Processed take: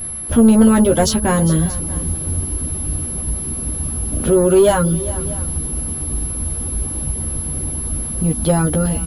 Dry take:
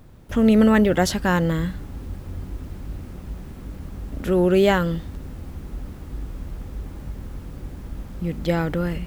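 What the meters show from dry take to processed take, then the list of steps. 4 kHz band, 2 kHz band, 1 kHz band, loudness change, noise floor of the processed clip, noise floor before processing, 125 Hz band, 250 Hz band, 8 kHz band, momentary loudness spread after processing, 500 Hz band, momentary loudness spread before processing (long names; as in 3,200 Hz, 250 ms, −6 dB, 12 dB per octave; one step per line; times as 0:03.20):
+4.0 dB, −1.5 dB, +4.0 dB, +3.0 dB, −25 dBFS, −39 dBFS, +7.0 dB, +5.5 dB, +21.5 dB, 10 LU, +5.5 dB, 20 LU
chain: pitch vibrato 3.7 Hz 12 cents
low-pass that shuts in the quiet parts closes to 2,900 Hz, open at −12 dBFS
parametric band 2,000 Hz −12.5 dB 0.71 octaves
in parallel at −2 dB: downward compressor, threshold −25 dBFS, peak gain reduction 12.5 dB
on the sum: bit reduction 8 bits
steady tone 11,000 Hz −32 dBFS
reverb reduction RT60 0.51 s
soft clipping −11.5 dBFS, distortion −16 dB
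double-tracking delay 13 ms −4 dB
multi-tap delay 405/632 ms −16.5/−20 dB
level +4.5 dB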